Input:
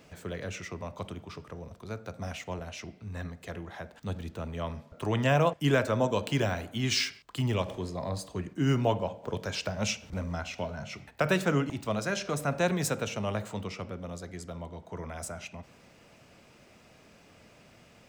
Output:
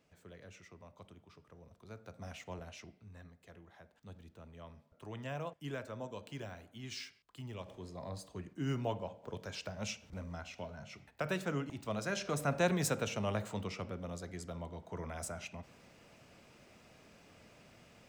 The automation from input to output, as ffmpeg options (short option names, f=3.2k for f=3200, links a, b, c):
-af "volume=5.5dB,afade=t=in:st=1.42:d=1.19:silence=0.354813,afade=t=out:st=2.61:d=0.61:silence=0.354813,afade=t=in:st=7.54:d=0.5:silence=0.446684,afade=t=in:st=11.65:d=0.81:silence=0.473151"